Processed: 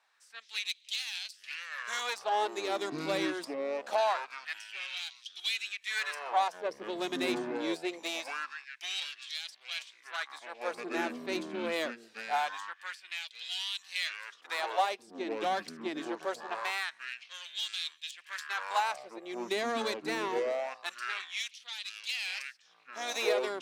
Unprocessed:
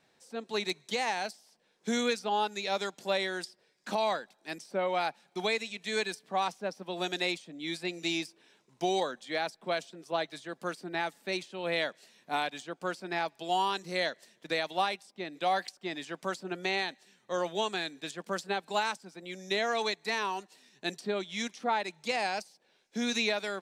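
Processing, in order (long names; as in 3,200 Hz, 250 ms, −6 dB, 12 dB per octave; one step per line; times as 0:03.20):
harmonic generator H 6 −18 dB, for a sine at −17.5 dBFS
delay with pitch and tempo change per echo 109 ms, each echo −7 semitones, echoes 3, each echo −6 dB
auto-filter high-pass sine 0.24 Hz 250–3,500 Hz
level −4.5 dB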